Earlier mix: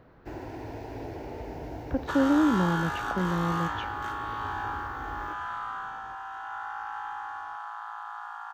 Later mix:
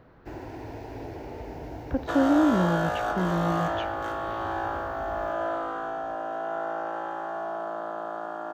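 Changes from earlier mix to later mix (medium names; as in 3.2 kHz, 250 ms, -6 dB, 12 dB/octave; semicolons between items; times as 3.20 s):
second sound: remove steep high-pass 810 Hz 96 dB/octave; reverb: on, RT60 0.50 s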